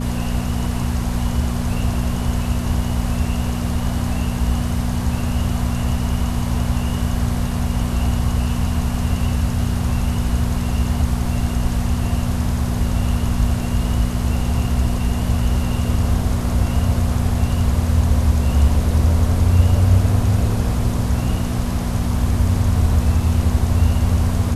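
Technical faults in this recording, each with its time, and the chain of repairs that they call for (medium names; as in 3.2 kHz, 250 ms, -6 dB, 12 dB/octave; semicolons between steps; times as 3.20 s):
hum 60 Hz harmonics 4 -23 dBFS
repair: de-hum 60 Hz, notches 4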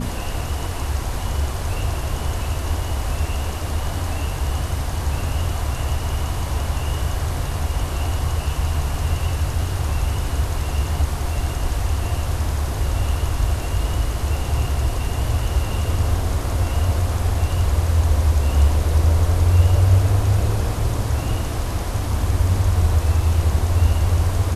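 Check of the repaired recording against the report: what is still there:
nothing left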